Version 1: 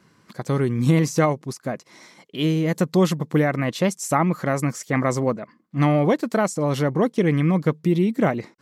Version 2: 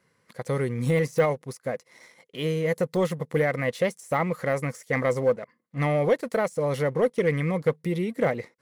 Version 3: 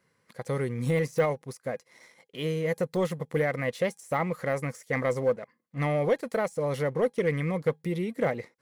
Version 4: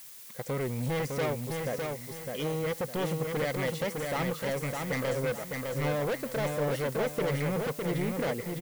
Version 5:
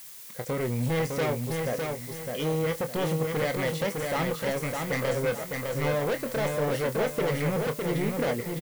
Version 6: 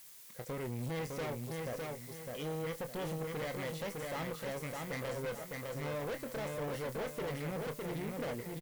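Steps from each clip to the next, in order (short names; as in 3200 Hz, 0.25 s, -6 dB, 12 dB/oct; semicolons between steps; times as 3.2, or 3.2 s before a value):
de-esser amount 75%; thirty-one-band EQ 200 Hz -5 dB, 315 Hz -8 dB, 500 Hz +11 dB, 2000 Hz +8 dB, 10000 Hz +10 dB; sample leveller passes 1; gain -9 dB
resonator 820 Hz, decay 0.17 s, harmonics all, mix 30%
added noise blue -48 dBFS; hard clip -28 dBFS, distortion -8 dB; feedback echo 0.607 s, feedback 34%, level -4 dB
doubler 25 ms -9 dB; gain +2.5 dB
tube stage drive 26 dB, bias 0.45; gain -7.5 dB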